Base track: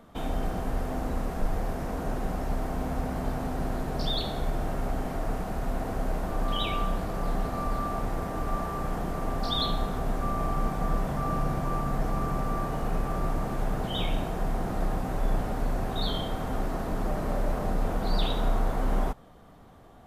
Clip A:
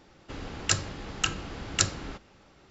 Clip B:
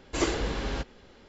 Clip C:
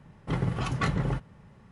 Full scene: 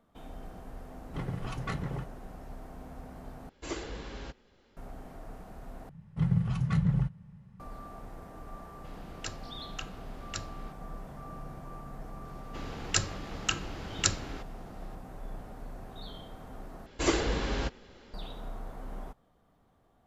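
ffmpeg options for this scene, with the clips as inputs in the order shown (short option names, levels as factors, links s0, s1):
-filter_complex "[3:a]asplit=2[s0][s1];[2:a]asplit=2[s2][s3];[1:a]asplit=2[s4][s5];[0:a]volume=0.178[s6];[s1]lowshelf=f=230:t=q:w=3:g=8.5[s7];[s4]lowpass=6500[s8];[s6]asplit=4[s9][s10][s11][s12];[s9]atrim=end=3.494[s13];[s2]atrim=end=1.28,asetpts=PTS-STARTPTS,volume=0.299[s14];[s10]atrim=start=4.766:end=5.894[s15];[s7]atrim=end=1.71,asetpts=PTS-STARTPTS,volume=0.299[s16];[s11]atrim=start=7.596:end=16.864[s17];[s3]atrim=end=1.28[s18];[s12]atrim=start=18.136[s19];[s0]atrim=end=1.71,asetpts=PTS-STARTPTS,volume=0.398,afade=t=in:d=0.004:c=hsin,afade=t=out:st=1.706:d=0.004:c=hsin,adelay=860[s20];[s8]atrim=end=2.7,asetpts=PTS-STARTPTS,volume=0.224,afade=t=in:d=0.004:c=hsin,afade=t=out:st=2.696:d=0.004:c=hsin,adelay=8550[s21];[s5]atrim=end=2.7,asetpts=PTS-STARTPTS,volume=0.75,afade=t=in:d=0.004:c=hsin,afade=t=out:st=2.696:d=0.004:c=hsin,adelay=12250[s22];[s13][s14]acrossfade=d=0.004:c1=hsin:c2=hsin[s23];[s23][s15]acrossfade=d=0.004:c1=hsin:c2=hsin[s24];[s24][s16]acrossfade=d=0.004:c1=hsin:c2=hsin[s25];[s25][s17]acrossfade=d=0.004:c1=hsin:c2=hsin[s26];[s26][s18]acrossfade=d=0.004:c1=hsin:c2=hsin[s27];[s27][s19]acrossfade=d=0.004:c1=hsin:c2=hsin[s28];[s28][s20][s21][s22]amix=inputs=4:normalize=0"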